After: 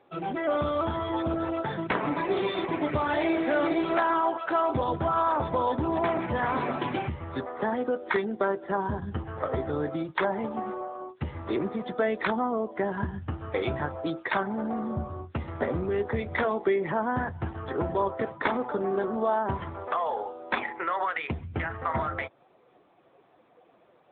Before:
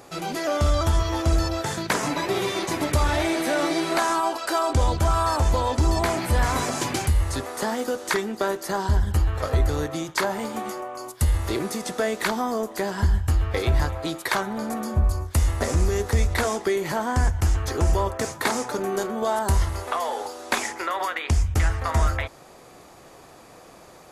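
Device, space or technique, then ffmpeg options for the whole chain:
mobile call with aggressive noise cancelling: -filter_complex "[0:a]asettb=1/sr,asplit=3[a][b][c];[a]atrim=end=19.104[d];[b]atrim=start=19.1:end=20.15,asetpts=PTS-STARTPTS,afade=t=in:d=0.004:c=qsin,afade=t=out:st=1.046:d=0.004:c=qsin,bandreject=f=95.73:t=h:w=4,bandreject=f=191.46:t=h:w=4,bandreject=f=287.19:t=h:w=4,bandreject=f=382.92:t=h:w=4[e];[c]atrim=start=20.146[f];[d][e]acrossfade=d=0.004:c1=hsin:c2=qsin[g];[g][f]acrossfade=d=0.004:c1=qsin:c2=hsin,highpass=120,afftdn=nr=12:nf=-35,volume=-1dB" -ar 8000 -c:a libopencore_amrnb -b:a 10200

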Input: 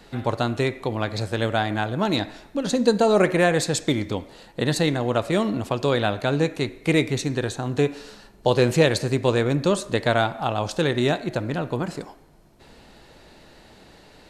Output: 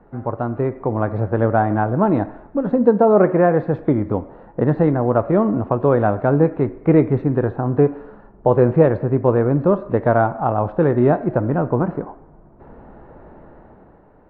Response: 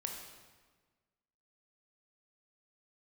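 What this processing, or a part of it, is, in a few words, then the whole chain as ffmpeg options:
action camera in a waterproof case: -filter_complex "[0:a]asettb=1/sr,asplit=3[a][b][c];[a]atrim=end=2.854[d];[b]atrim=start=2.85:end=3.63,asetpts=PTS-STARTPTS,afade=t=in:d=0.004:c=qsin,afade=t=out:st=0.776:d=0.004:c=qsin,highpass=110[e];[c]atrim=start=3.626[f];[d][e]acrossfade=d=0.004:c1=hsin:c2=qsin[g];[g][f]acrossfade=d=0.004:c1=qsin:c2=hsin,lowpass=f=1.3k:w=0.5412,lowpass=f=1.3k:w=1.3066,dynaudnorm=f=130:g=11:m=8.5dB" -ar 24000 -c:a aac -b:a 48k

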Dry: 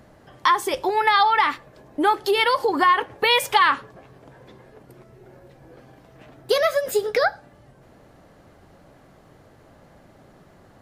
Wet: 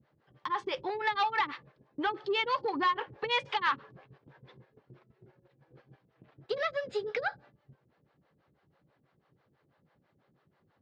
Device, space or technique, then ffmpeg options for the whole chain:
guitar amplifier with harmonic tremolo: -filter_complex "[0:a]acrossover=split=430[a][b];[a]aeval=exprs='val(0)*(1-1/2+1/2*cos(2*PI*6.1*n/s))':c=same[c];[b]aeval=exprs='val(0)*(1-1/2-1/2*cos(2*PI*6.1*n/s))':c=same[d];[c][d]amix=inputs=2:normalize=0,asoftclip=type=tanh:threshold=-18dB,highpass=110,equalizer=f=140:t=q:w=4:g=5,equalizer=f=270:t=q:w=4:g=-3,equalizer=f=660:t=q:w=4:g=-7,lowpass=f=4.4k:w=0.5412,lowpass=f=4.4k:w=1.3066,agate=range=-10dB:threshold=-52dB:ratio=16:detection=peak,equalizer=f=61:t=o:w=0.77:g=4,volume=-3.5dB"

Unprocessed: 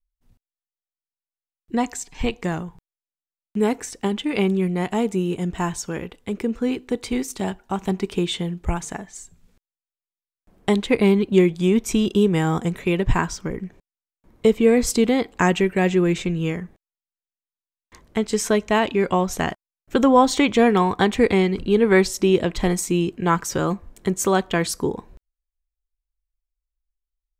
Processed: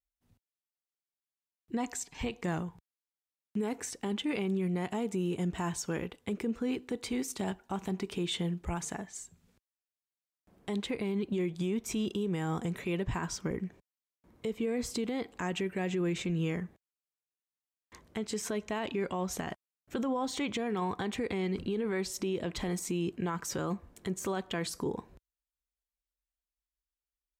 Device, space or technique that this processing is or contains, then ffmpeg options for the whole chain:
podcast mastering chain: -af "highpass=61,deesser=0.5,acompressor=threshold=-22dB:ratio=3,alimiter=limit=-20dB:level=0:latency=1:release=27,volume=-4.5dB" -ar 48000 -c:a libmp3lame -b:a 96k

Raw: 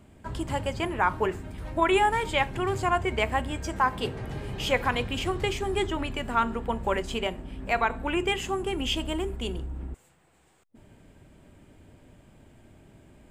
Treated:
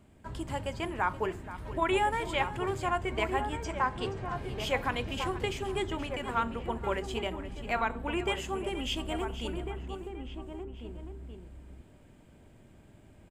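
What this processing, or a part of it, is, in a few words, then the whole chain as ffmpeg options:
ducked delay: -filter_complex "[0:a]asettb=1/sr,asplit=3[a][b][c];[a]atrim=end=3.644[d];[b]atrim=start=3.64:end=4.36,asetpts=PTS-STARTPTS,afade=t=in:d=0.004:c=qsin,afade=t=out:st=0.716:d=0.004:c=qsin,lowpass=f=9k:w=0.5412,lowpass=f=9k:w=1.3066[e];[c]atrim=start=4.356[f];[d][e]acrossfade=d=0.004:c1=hsin:c2=qsin[g];[g][f]acrossfade=d=0.004:c1=qsin:c2=hsin,asplit=2[h][i];[i]adelay=1399,volume=-6dB,highshelf=f=4k:g=-31.5[j];[h][j]amix=inputs=2:normalize=0,asplit=3[k][l][m];[l]adelay=476,volume=-2dB[n];[m]apad=whole_len=669316[o];[n][o]sidechaincompress=threshold=-38dB:ratio=3:attack=16:release=1410[p];[k][p]amix=inputs=2:normalize=0,volume=-5.5dB"

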